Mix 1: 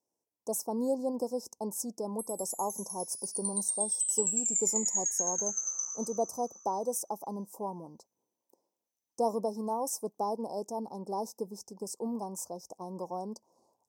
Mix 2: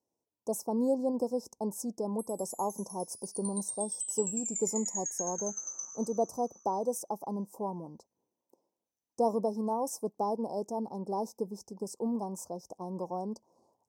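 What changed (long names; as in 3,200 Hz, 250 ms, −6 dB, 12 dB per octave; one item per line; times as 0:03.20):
background: send −9.0 dB
master: add spectral tilt −1.5 dB per octave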